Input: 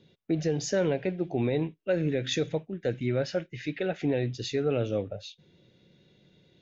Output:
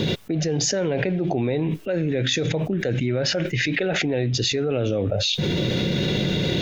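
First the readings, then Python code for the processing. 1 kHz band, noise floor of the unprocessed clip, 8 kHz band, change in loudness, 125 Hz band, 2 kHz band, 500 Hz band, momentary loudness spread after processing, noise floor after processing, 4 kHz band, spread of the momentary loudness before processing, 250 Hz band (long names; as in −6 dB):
+7.0 dB, −66 dBFS, can't be measured, +6.5 dB, +9.5 dB, +11.5 dB, +5.0 dB, 2 LU, −29 dBFS, +14.5 dB, 6 LU, +7.0 dB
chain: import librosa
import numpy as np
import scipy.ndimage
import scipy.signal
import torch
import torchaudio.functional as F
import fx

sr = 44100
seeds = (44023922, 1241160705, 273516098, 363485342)

y = fx.env_flatten(x, sr, amount_pct=100)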